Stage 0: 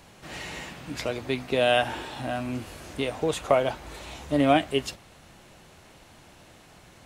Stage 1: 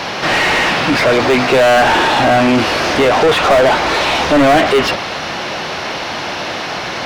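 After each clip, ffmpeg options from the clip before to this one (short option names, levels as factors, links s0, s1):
-filter_complex "[0:a]highshelf=f=6500:t=q:w=3:g=-6.5,acrossover=split=2700[s0][s1];[s1]acompressor=threshold=0.00562:ratio=4:attack=1:release=60[s2];[s0][s2]amix=inputs=2:normalize=0,asplit=2[s3][s4];[s4]highpass=f=720:p=1,volume=79.4,asoftclip=type=tanh:threshold=0.447[s5];[s3][s5]amix=inputs=2:normalize=0,lowpass=f=2200:p=1,volume=0.501,volume=1.68"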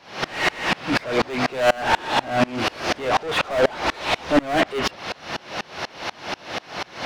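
-af "aeval=exprs='val(0)*pow(10,-29*if(lt(mod(-4.1*n/s,1),2*abs(-4.1)/1000),1-mod(-4.1*n/s,1)/(2*abs(-4.1)/1000),(mod(-4.1*n/s,1)-2*abs(-4.1)/1000)/(1-2*abs(-4.1)/1000))/20)':c=same,volume=0.794"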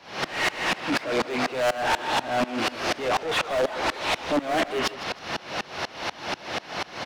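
-filter_complex "[0:a]aecho=1:1:157|314|471:0.141|0.0396|0.0111,acrossover=split=190[s0][s1];[s0]acompressor=threshold=0.00708:ratio=6[s2];[s1]asoftclip=type=tanh:threshold=0.119[s3];[s2][s3]amix=inputs=2:normalize=0"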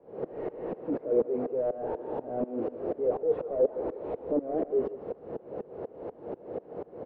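-af "lowpass=f=460:t=q:w=4.9,volume=0.398"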